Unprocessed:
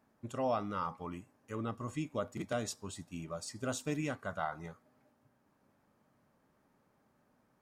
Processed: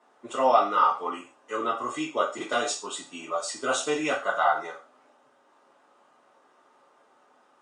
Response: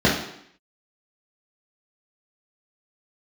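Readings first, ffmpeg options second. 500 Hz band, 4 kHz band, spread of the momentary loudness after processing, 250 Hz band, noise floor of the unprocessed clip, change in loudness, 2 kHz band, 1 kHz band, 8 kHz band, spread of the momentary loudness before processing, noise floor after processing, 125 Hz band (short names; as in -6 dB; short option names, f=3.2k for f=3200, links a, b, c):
+11.0 dB, +14.0 dB, 14 LU, +4.0 dB, -74 dBFS, +12.0 dB, +14.5 dB, +16.0 dB, +11.0 dB, 11 LU, -63 dBFS, -10.5 dB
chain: -filter_complex "[0:a]highpass=890[a];[1:a]atrim=start_sample=2205,afade=t=out:st=0.34:d=0.01,atrim=end_sample=15435,asetrate=83790,aresample=44100[b];[a][b]afir=irnorm=-1:irlink=0" -ar 22050 -c:a libmp3lame -b:a 48k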